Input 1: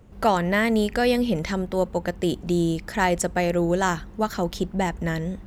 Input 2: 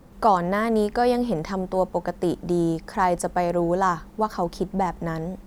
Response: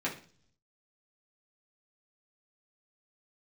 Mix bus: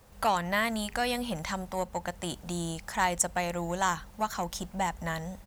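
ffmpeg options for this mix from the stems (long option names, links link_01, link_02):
-filter_complex "[0:a]volume=-8.5dB[link_01];[1:a]highpass=frequency=430:width=0.5412,highpass=frequency=430:width=1.3066,acompressor=threshold=-26dB:ratio=2.5,asoftclip=type=tanh:threshold=-20dB,adelay=0.6,volume=-5dB[link_02];[link_01][link_02]amix=inputs=2:normalize=0,equalizer=frequency=300:width_type=o:width=1.2:gain=-4.5,highshelf=frequency=2800:gain=8.5"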